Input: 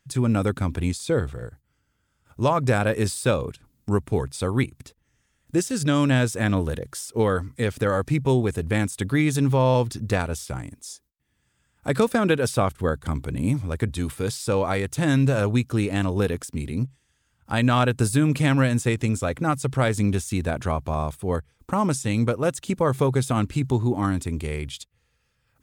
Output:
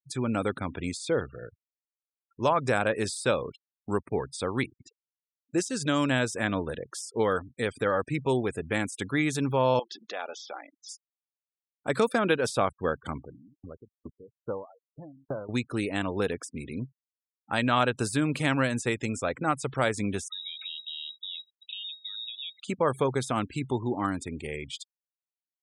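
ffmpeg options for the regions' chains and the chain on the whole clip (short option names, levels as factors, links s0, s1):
-filter_complex "[0:a]asettb=1/sr,asplit=3[s0][s1][s2];[s0]atrim=end=9.794[s3];[s1]atrim=start=9.79:end=10.89,asetpts=PTS-STARTPTS,afade=t=in:d=0.004:c=qsin,afade=t=out:st=1.096:d=0.004:c=qsin,bandreject=f=920:w=6.4,acompressor=threshold=0.0501:ratio=6:attack=3.2:release=140:knee=1:detection=peak,highpass=460,equalizer=f=580:t=q:w=4:g=4,equalizer=f=850:t=q:w=4:g=8,equalizer=f=3300:t=q:w=4:g=7,lowpass=f=5800:w=0.5412,lowpass=f=5800:w=1.3066[s4];[s2]atrim=start=10.886[s5];[s3][s4]acrossfade=d=0.004:c1=hsin:c2=qsin[s6];[s6][s5]acrossfade=d=0.004:c1=qsin:c2=hsin,asettb=1/sr,asplit=3[s7][s8][s9];[s7]atrim=end=13.224[s10];[s8]atrim=start=13.22:end=15.49,asetpts=PTS-STARTPTS,afade=t=in:d=0.004:c=qsin,afade=t=out:st=2.266:d=0.004:c=qsin,aeval=exprs='if(lt(val(0),0),0.708*val(0),val(0))':c=same,lowpass=f=1200:w=0.5412,lowpass=f=1200:w=1.3066,aeval=exprs='val(0)*pow(10,-38*if(lt(mod(2.4*n/s,1),2*abs(2.4)/1000),1-mod(2.4*n/s,1)/(2*abs(2.4)/1000),(mod(2.4*n/s,1)-2*abs(2.4)/1000)/(1-2*abs(2.4)/1000))/20)':c=same[s11];[s9]atrim=start=15.486[s12];[s10][s11]acrossfade=d=0.004:c1=hsin:c2=qsin[s13];[s13][s12]acrossfade=d=0.004:c1=qsin:c2=hsin,asettb=1/sr,asplit=3[s14][s15][s16];[s14]atrim=end=20.284[s17];[s15]atrim=start=20.28:end=22.6,asetpts=PTS-STARTPTS,afade=t=in:d=0.004:c=qsin,afade=t=out:st=2.316:d=0.004:c=qsin,highshelf=f=2600:g=-8.5,acompressor=threshold=0.0224:ratio=12:attack=3.2:release=140:knee=1:detection=peak,lowpass=f=3300:t=q:w=0.5098,lowpass=f=3300:t=q:w=0.6013,lowpass=f=3300:t=q:w=0.9,lowpass=f=3300:t=q:w=2.563,afreqshift=-3900[s18];[s16]atrim=start=22.596[s19];[s17][s18]acrossfade=d=0.004:c1=hsin:c2=qsin[s20];[s20][s19]acrossfade=d=0.004:c1=qsin:c2=hsin,highpass=f=360:p=1,afftfilt=real='re*gte(hypot(re,im),0.01)':imag='im*gte(hypot(re,im),0.01)':win_size=1024:overlap=0.75,acrossover=split=9200[s21][s22];[s22]acompressor=threshold=0.00251:ratio=4:attack=1:release=60[s23];[s21][s23]amix=inputs=2:normalize=0,volume=0.841"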